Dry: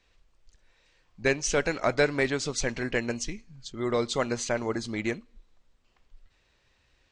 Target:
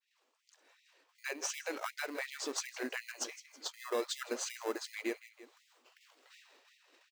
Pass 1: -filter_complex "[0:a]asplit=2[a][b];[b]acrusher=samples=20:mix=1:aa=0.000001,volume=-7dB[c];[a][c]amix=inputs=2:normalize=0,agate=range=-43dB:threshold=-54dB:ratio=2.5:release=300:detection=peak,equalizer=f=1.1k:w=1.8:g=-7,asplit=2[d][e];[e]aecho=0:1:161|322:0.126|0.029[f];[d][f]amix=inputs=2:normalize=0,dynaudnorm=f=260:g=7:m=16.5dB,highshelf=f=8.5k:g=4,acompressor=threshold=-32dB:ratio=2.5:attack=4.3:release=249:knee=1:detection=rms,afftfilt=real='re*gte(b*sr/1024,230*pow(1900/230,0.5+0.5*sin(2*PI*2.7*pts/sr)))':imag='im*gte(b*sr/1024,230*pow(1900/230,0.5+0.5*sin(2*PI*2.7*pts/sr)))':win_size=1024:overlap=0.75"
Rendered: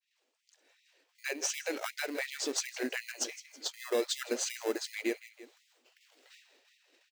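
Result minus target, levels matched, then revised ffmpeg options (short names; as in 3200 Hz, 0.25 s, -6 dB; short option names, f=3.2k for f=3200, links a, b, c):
1000 Hz band -5.0 dB; compressor: peak gain reduction -4 dB
-filter_complex "[0:a]asplit=2[a][b];[b]acrusher=samples=20:mix=1:aa=0.000001,volume=-7dB[c];[a][c]amix=inputs=2:normalize=0,agate=range=-43dB:threshold=-54dB:ratio=2.5:release=300:detection=peak,equalizer=f=1.1k:w=1.8:g=2.5,asplit=2[d][e];[e]aecho=0:1:161|322:0.126|0.029[f];[d][f]amix=inputs=2:normalize=0,dynaudnorm=f=260:g=7:m=16.5dB,highshelf=f=8.5k:g=4,acompressor=threshold=-38.5dB:ratio=2.5:attack=4.3:release=249:knee=1:detection=rms,afftfilt=real='re*gte(b*sr/1024,230*pow(1900/230,0.5+0.5*sin(2*PI*2.7*pts/sr)))':imag='im*gte(b*sr/1024,230*pow(1900/230,0.5+0.5*sin(2*PI*2.7*pts/sr)))':win_size=1024:overlap=0.75"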